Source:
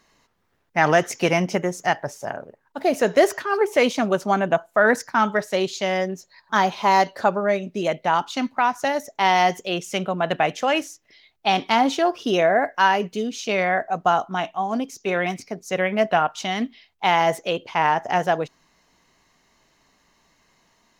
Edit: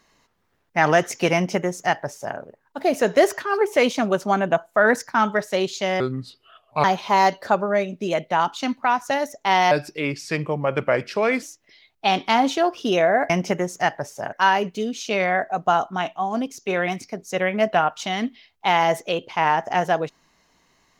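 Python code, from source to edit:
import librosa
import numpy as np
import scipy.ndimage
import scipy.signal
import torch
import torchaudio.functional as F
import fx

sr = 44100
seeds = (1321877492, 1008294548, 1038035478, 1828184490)

y = fx.edit(x, sr, fx.duplicate(start_s=1.34, length_s=1.03, to_s=12.71),
    fx.speed_span(start_s=6.0, length_s=0.58, speed=0.69),
    fx.speed_span(start_s=9.45, length_s=1.39, speed=0.81), tone=tone)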